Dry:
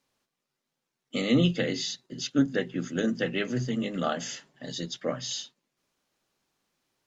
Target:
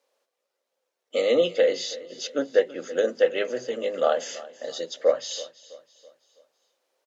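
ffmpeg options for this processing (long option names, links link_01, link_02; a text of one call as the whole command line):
ffmpeg -i in.wav -filter_complex "[0:a]highpass=frequency=520:width_type=q:width=4.9,asplit=2[link_01][link_02];[link_02]aecho=0:1:328|656|984|1312:0.119|0.0535|0.0241|0.0108[link_03];[link_01][link_03]amix=inputs=2:normalize=0" out.wav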